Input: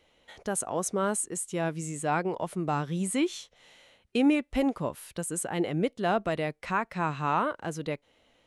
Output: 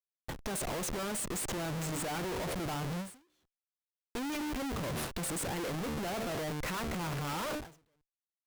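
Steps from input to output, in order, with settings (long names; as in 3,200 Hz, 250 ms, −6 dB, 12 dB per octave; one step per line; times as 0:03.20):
hum removal 75.47 Hz, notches 10
comparator with hysteresis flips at −44 dBFS
every ending faded ahead of time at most 140 dB per second
level −5 dB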